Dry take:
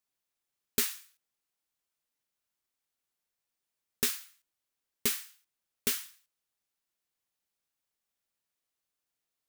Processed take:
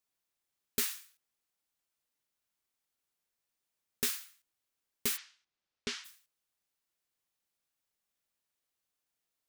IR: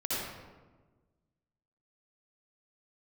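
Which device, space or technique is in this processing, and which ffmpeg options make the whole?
soft clipper into limiter: -filter_complex "[0:a]asoftclip=type=tanh:threshold=0.158,alimiter=limit=0.1:level=0:latency=1:release=105,asplit=3[s0][s1][s2];[s0]afade=t=out:st=5.16:d=0.02[s3];[s1]lowpass=f=5700:w=0.5412,lowpass=f=5700:w=1.3066,afade=t=in:st=5.16:d=0.02,afade=t=out:st=6.04:d=0.02[s4];[s2]afade=t=in:st=6.04:d=0.02[s5];[s3][s4][s5]amix=inputs=3:normalize=0"

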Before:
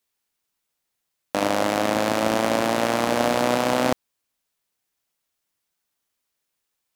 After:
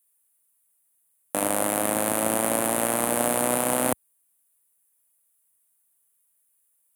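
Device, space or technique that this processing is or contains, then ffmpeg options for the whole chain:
budget condenser microphone: -af "highpass=76,highshelf=f=7300:t=q:w=3:g=13,volume=0.631"

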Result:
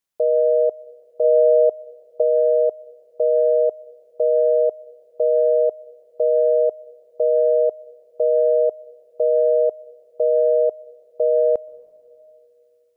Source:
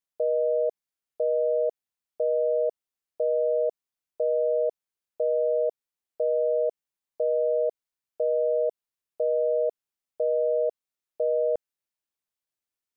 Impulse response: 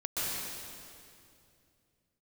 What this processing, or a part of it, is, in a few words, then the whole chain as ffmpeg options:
keyed gated reverb: -filter_complex "[0:a]asplit=3[s0][s1][s2];[1:a]atrim=start_sample=2205[s3];[s1][s3]afir=irnorm=-1:irlink=0[s4];[s2]apad=whole_len=571783[s5];[s4][s5]sidechaingate=range=0.112:threshold=0.0891:ratio=16:detection=peak,volume=0.398[s6];[s0][s6]amix=inputs=2:normalize=0,asettb=1/sr,asplit=3[s7][s8][s9];[s7]atrim=end=1.244[s10];[s8]atrim=start=1.24:end=2.22,asetpts=PTS-STARTPTS,afade=t=in:d=0.004:c=qsin,afade=t=out:st=0.976:d=0.004:c=qsin,equalizer=f=650:t=o:w=1.5:g=3[s11];[s9]atrim=start=2.216[s12];[s10][s11]acrossfade=d=0.004:c1=hsin:c2=qsin[s13];[s13][s12]acrossfade=d=0.004:c1=qsin:c2=hsin,volume=2.11"

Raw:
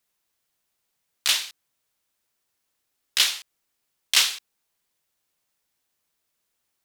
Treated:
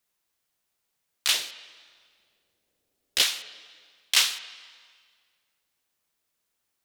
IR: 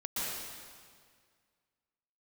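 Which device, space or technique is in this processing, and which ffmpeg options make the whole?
filtered reverb send: -filter_complex "[0:a]asettb=1/sr,asplit=3[s0][s1][s2];[s0]atrim=end=1.344[s3];[s1]atrim=start=1.34:end=3.23,asetpts=PTS-STARTPTS,afade=t=in:d=0.004:c=qsin,afade=t=out:st=1.886:d=0.004:c=qsin,lowshelf=f=750:t=q:w=1.5:g=9[s4];[s2]atrim=start=3.226[s5];[s3][s4]acrossfade=d=0.004:c1=hsin:c2=qsin[s6];[s6][s5]acrossfade=d=0.004:c1=qsin:c2=hsin,asplit=2[s7][s8];[s8]highpass=180,lowpass=4100[s9];[1:a]atrim=start_sample=2205[s10];[s9][s10]afir=irnorm=-1:irlink=0,volume=0.1[s11];[s7][s11]amix=inputs=2:normalize=0,volume=0.794"

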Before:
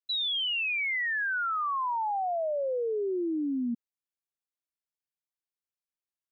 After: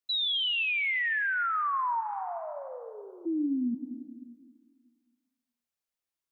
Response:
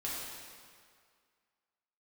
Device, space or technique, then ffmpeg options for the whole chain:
ducked reverb: -filter_complex "[0:a]asplit=3[s0][s1][s2];[s0]afade=t=out:st=2:d=0.02[s3];[s1]highpass=1200,afade=t=in:st=2:d=0.02,afade=t=out:st=3.25:d=0.02[s4];[s2]afade=t=in:st=3.25:d=0.02[s5];[s3][s4][s5]amix=inputs=3:normalize=0,asplit=3[s6][s7][s8];[1:a]atrim=start_sample=2205[s9];[s7][s9]afir=irnorm=-1:irlink=0[s10];[s8]apad=whole_len=278651[s11];[s10][s11]sidechaincompress=threshold=0.0112:ratio=6:attack=5.1:release=204,volume=0.531[s12];[s6][s12]amix=inputs=2:normalize=0"

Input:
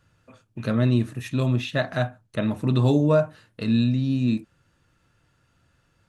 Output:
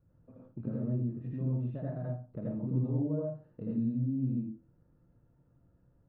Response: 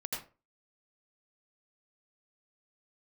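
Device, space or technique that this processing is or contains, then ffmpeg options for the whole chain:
television next door: -filter_complex "[0:a]acompressor=threshold=0.0178:ratio=3,lowpass=470[s0];[1:a]atrim=start_sample=2205[s1];[s0][s1]afir=irnorm=-1:irlink=0"

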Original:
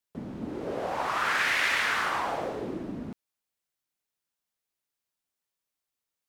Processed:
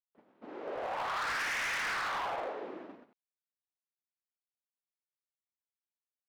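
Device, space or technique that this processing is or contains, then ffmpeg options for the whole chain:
walkie-talkie: -af "highpass=530,lowpass=2800,asoftclip=type=hard:threshold=0.0299,agate=range=0.126:threshold=0.00562:ratio=16:detection=peak,volume=0.841"

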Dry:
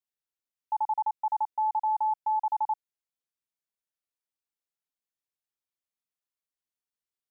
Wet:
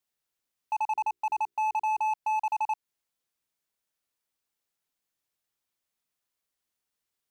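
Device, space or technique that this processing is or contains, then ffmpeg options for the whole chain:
limiter into clipper: -filter_complex "[0:a]alimiter=level_in=1.68:limit=0.0631:level=0:latency=1:release=170,volume=0.596,asoftclip=type=hard:threshold=0.0224,asettb=1/sr,asplit=3[s0][s1][s2];[s0]atrim=end=0.864[s3];[s1]atrim=start=0.86:end=2.13,asetpts=PTS-STARTPTS,afade=t=in:d=0.004:c=qsin,afade=t=out:st=1.266:d=0.004:c=qsin,bandreject=f=60:t=h:w=6,bandreject=f=120:t=h:w=6,bandreject=f=180:t=h:w=6,bandreject=f=240:t=h:w=6,bandreject=f=300:t=h:w=6,bandreject=f=360:t=h:w=6,bandreject=f=420:t=h:w=6[s4];[s2]atrim=start=2.126[s5];[s3][s4]acrossfade=d=0.004:c1=hsin:c2=qsin[s6];[s6][s5]acrossfade=d=0.004:c1=qsin:c2=hsin,volume=2.51"

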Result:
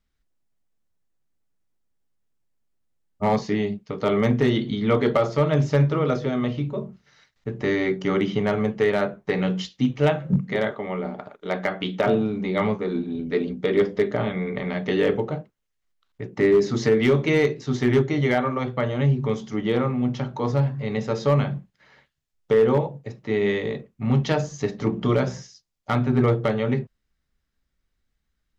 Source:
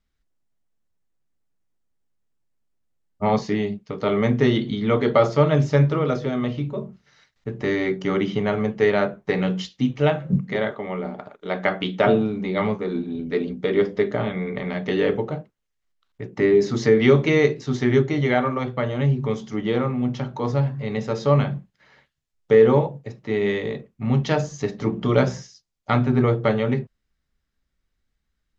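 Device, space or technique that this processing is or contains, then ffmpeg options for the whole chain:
limiter into clipper: -af "alimiter=limit=0.376:level=0:latency=1:release=333,asoftclip=type=hard:threshold=0.266"

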